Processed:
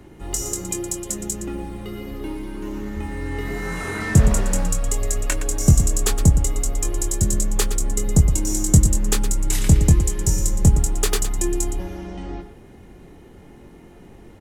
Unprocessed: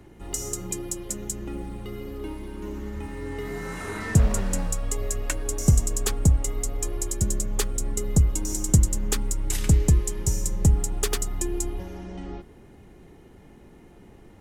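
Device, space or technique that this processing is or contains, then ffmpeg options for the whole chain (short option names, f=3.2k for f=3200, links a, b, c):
slapback doubling: -filter_complex "[0:a]asplit=3[a][b][c];[b]adelay=23,volume=-7.5dB[d];[c]adelay=116,volume=-10.5dB[e];[a][d][e]amix=inputs=3:normalize=0,volume=4dB"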